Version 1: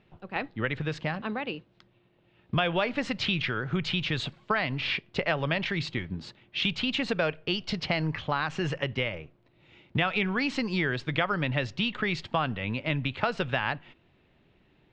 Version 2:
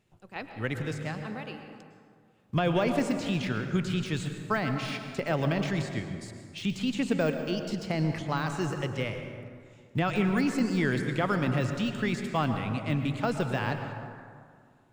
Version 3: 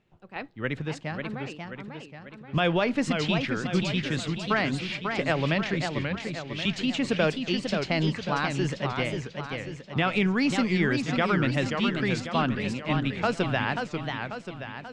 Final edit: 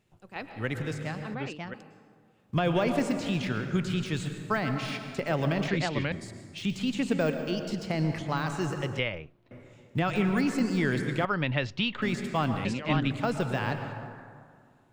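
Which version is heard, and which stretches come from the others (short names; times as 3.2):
2
1.34–1.74 from 3
5.68–6.12 from 3
8.99–9.51 from 1
11.25–12.02 from 1
12.65–13.11 from 3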